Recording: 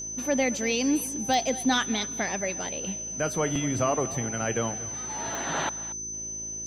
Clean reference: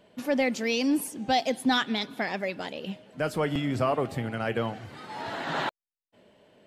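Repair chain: de-click; de-hum 54.7 Hz, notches 7; notch 6100 Hz, Q 30; inverse comb 0.232 s -17.5 dB

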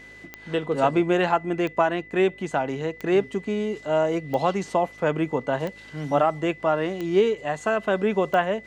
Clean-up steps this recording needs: de-click; de-hum 52.6 Hz, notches 10; notch 2000 Hz, Q 30

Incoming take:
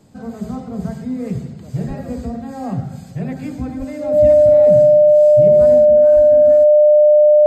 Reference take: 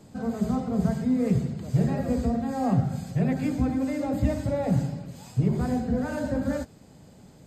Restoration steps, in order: notch 600 Hz, Q 30; de-plosive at 1.87/3.78/6.15; gain 0 dB, from 5.85 s +6 dB

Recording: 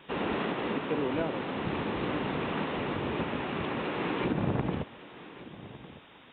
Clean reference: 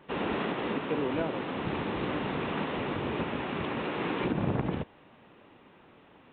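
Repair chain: noise print and reduce 8 dB; inverse comb 1.156 s -17 dB

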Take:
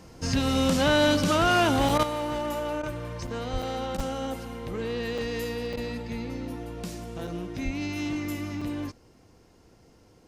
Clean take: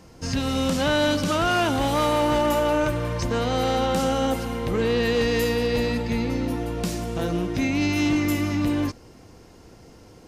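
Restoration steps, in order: de-plosive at 3.52/3.96/7.64; interpolate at 1.89/3.27/3.62/4/5.18/5.73/7.27/8.61, 4.3 ms; interpolate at 1.98/2.82/3.97/5.76, 11 ms; gain 0 dB, from 2.03 s +9 dB

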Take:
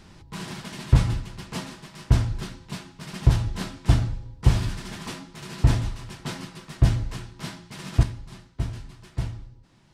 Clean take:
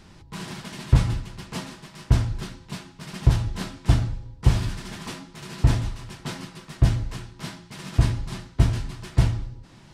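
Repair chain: gain 0 dB, from 8.03 s +9.5 dB

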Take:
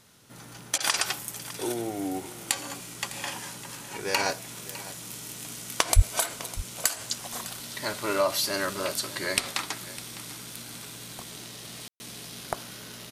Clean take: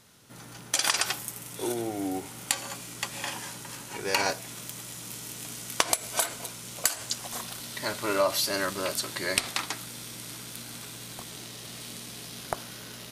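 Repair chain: de-plosive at 5.95; room tone fill 11.88–12; interpolate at 0.78, 21 ms; inverse comb 0.605 s -16.5 dB

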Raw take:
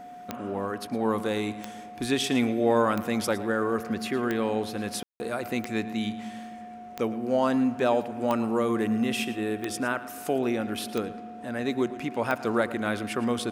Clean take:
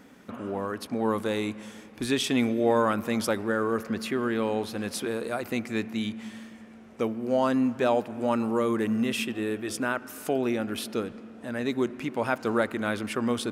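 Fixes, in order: de-click; notch 720 Hz, Q 30; room tone fill 5.03–5.2; inverse comb 0.112 s -16 dB

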